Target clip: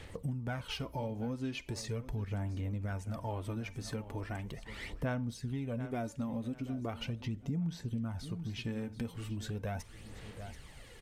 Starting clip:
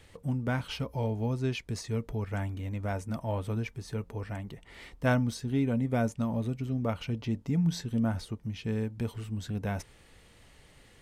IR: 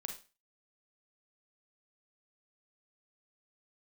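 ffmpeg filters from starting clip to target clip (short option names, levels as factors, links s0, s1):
-filter_complex "[0:a]asplit=2[s0][s1];[1:a]atrim=start_sample=2205[s2];[s1][s2]afir=irnorm=-1:irlink=0,volume=0.211[s3];[s0][s3]amix=inputs=2:normalize=0,aphaser=in_gain=1:out_gain=1:delay=3.9:decay=0.49:speed=0.39:type=sinusoidal,aecho=1:1:734|1468:0.119|0.0238,acompressor=threshold=0.0141:ratio=4,volume=1.12"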